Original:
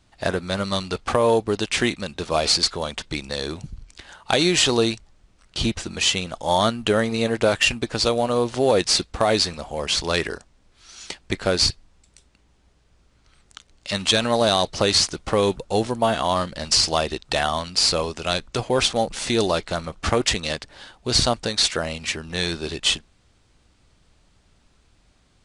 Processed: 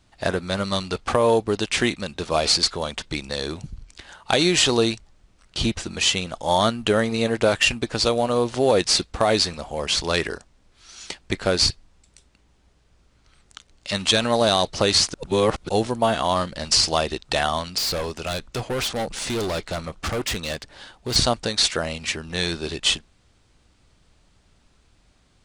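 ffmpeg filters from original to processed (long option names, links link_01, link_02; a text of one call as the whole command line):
ffmpeg -i in.wav -filter_complex "[0:a]asettb=1/sr,asplit=3[link_01][link_02][link_03];[link_01]atrim=end=17.784[link_04];[link_02]atrim=start=17.78:end=21.16,asetpts=PTS-STARTPTS,afade=type=in:duration=0.004:curve=qsin,afade=type=out:start_time=3.376:duration=0.004:curve=qsin,volume=22.5dB,asoftclip=hard,volume=-22.5dB[link_05];[link_03]atrim=start=21.156[link_06];[link_04][link_05]acrossfade=duration=0.004:curve1=hsin:curve2=qsin[link_07];[link_07][link_06]acrossfade=duration=0.004:curve1=qsin:curve2=hsin,asplit=3[link_08][link_09][link_10];[link_08]atrim=end=15.142[link_11];[link_09]atrim=start=15.138:end=15.692,asetpts=PTS-STARTPTS,areverse[link_12];[link_10]atrim=start=15.688[link_13];[link_11][link_12]acrossfade=duration=0.004:curve1=hsin:curve2=hsin[link_14];[link_14][link_13]acrossfade=duration=0.004:curve1=hsin:curve2=hsin" out.wav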